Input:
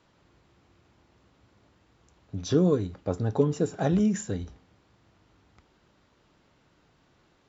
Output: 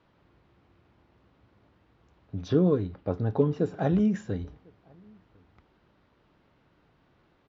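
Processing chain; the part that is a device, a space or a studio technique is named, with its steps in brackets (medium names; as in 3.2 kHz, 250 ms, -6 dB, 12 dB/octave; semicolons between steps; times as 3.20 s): shout across a valley (distance through air 210 m; echo from a far wall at 180 m, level -30 dB); 2.48–3.59 s: low-pass 5.5 kHz 24 dB/octave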